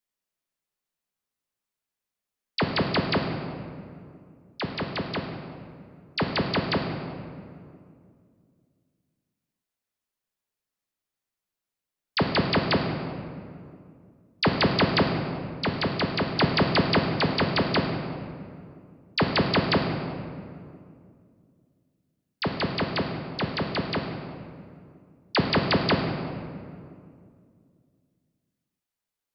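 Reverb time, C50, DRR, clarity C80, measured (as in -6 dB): 2.3 s, 4.5 dB, 1.5 dB, 6.0 dB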